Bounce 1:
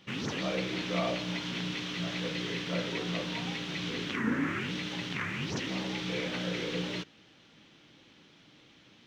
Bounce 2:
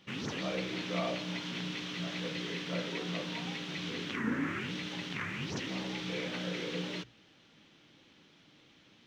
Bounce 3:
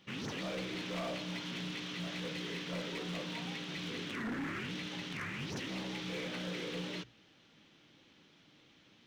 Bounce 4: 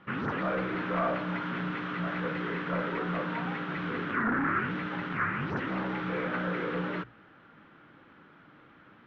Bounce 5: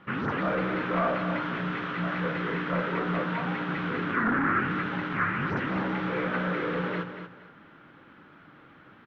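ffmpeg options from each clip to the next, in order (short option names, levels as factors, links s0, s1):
-af "bandreject=f=60:t=h:w=6,bandreject=f=120:t=h:w=6,volume=0.708"
-af "asoftclip=type=hard:threshold=0.0224,volume=0.794"
-af "lowpass=f=1400:t=q:w=3.3,volume=2.37"
-af "aecho=1:1:234|468|702:0.355|0.0923|0.024,volume=1.33"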